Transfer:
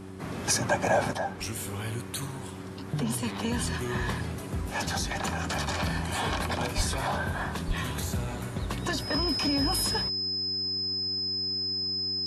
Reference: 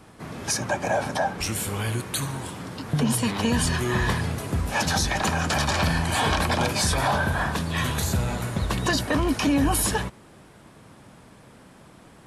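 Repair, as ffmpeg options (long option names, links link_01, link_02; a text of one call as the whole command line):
ffmpeg -i in.wav -filter_complex "[0:a]bandreject=frequency=94.9:width_type=h:width=4,bandreject=frequency=189.8:width_type=h:width=4,bandreject=frequency=284.7:width_type=h:width=4,bandreject=frequency=379.6:width_type=h:width=4,bandreject=frequency=5100:width=30,asplit=3[link_01][link_02][link_03];[link_01]afade=type=out:start_time=6.76:duration=0.02[link_04];[link_02]highpass=frequency=140:width=0.5412,highpass=frequency=140:width=1.3066,afade=type=in:start_time=6.76:duration=0.02,afade=type=out:start_time=6.88:duration=0.02[link_05];[link_03]afade=type=in:start_time=6.88:duration=0.02[link_06];[link_04][link_05][link_06]amix=inputs=3:normalize=0,asplit=3[link_07][link_08][link_09];[link_07]afade=type=out:start_time=7.67:duration=0.02[link_10];[link_08]highpass=frequency=140:width=0.5412,highpass=frequency=140:width=1.3066,afade=type=in:start_time=7.67:duration=0.02,afade=type=out:start_time=7.79:duration=0.02[link_11];[link_09]afade=type=in:start_time=7.79:duration=0.02[link_12];[link_10][link_11][link_12]amix=inputs=3:normalize=0,asetnsamples=nb_out_samples=441:pad=0,asendcmd='1.13 volume volume 7dB',volume=0dB" out.wav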